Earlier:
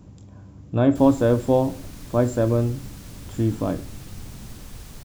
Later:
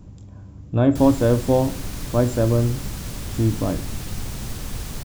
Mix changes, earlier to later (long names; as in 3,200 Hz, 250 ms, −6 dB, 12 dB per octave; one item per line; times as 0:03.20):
speech: add low-shelf EQ 68 Hz +11.5 dB
background +9.5 dB